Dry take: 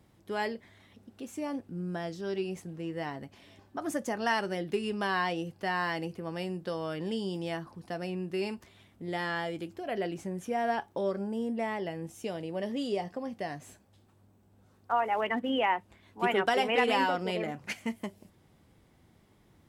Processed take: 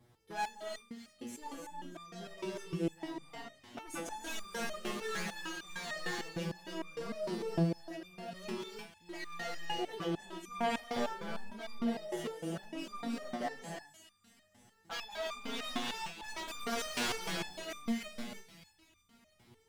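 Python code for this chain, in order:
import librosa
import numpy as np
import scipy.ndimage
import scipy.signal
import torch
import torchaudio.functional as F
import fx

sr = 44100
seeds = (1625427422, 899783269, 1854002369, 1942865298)

y = fx.spec_box(x, sr, start_s=6.98, length_s=0.93, low_hz=760.0, high_hz=4200.0, gain_db=-8)
y = 10.0 ** (-30.0 / 20.0) * (np.abs((y / 10.0 ** (-30.0 / 20.0) + 3.0) % 4.0 - 2.0) - 1.0)
y = fx.echo_wet_highpass(y, sr, ms=317, feedback_pct=56, hz=2100.0, wet_db=-10.0)
y = fx.rev_gated(y, sr, seeds[0], gate_ms=360, shape='rising', drr_db=0.5)
y = fx.resonator_held(y, sr, hz=6.6, low_hz=120.0, high_hz=1200.0)
y = y * 10.0 ** (8.5 / 20.0)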